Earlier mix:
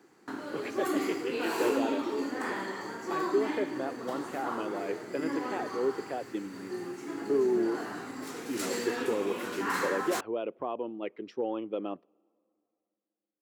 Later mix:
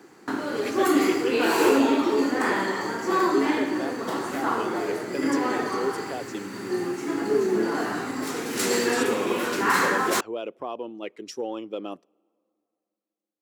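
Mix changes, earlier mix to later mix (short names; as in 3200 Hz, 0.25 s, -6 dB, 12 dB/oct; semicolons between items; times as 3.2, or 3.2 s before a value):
speech: remove air absorption 380 m; background +10.0 dB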